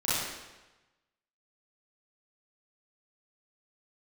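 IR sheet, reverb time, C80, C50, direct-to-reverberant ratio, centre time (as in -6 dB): 1.1 s, 0.5 dB, -4.0 dB, -11.5 dB, 103 ms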